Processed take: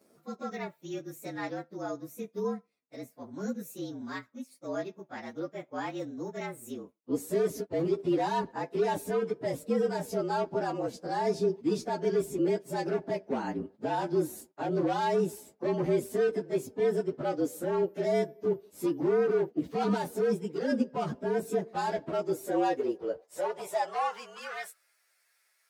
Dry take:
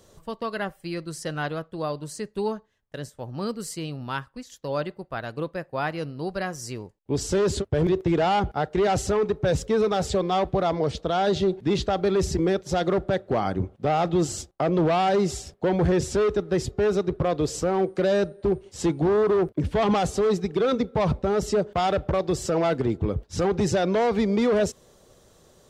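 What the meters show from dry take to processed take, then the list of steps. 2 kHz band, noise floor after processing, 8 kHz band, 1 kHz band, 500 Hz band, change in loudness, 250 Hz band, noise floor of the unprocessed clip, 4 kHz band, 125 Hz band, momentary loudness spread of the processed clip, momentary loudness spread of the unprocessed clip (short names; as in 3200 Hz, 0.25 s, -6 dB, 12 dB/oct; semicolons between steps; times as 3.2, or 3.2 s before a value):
-7.0 dB, -72 dBFS, -11.0 dB, -6.5 dB, -6.0 dB, -6.5 dB, -6.5 dB, -60 dBFS, -11.5 dB, -12.0 dB, 12 LU, 10 LU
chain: inharmonic rescaling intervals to 112%; high-pass sweep 250 Hz -> 1900 Hz, 22.21–24.96; gain -6.5 dB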